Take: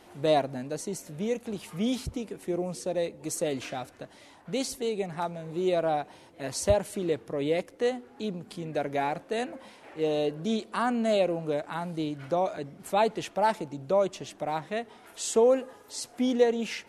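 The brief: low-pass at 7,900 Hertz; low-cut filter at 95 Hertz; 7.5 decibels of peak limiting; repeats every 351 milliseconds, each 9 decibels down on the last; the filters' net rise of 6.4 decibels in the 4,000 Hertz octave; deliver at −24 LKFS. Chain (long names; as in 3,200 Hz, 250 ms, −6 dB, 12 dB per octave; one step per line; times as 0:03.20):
high-pass filter 95 Hz
low-pass filter 7,900 Hz
parametric band 4,000 Hz +8 dB
brickwall limiter −17.5 dBFS
repeating echo 351 ms, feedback 35%, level −9 dB
level +6.5 dB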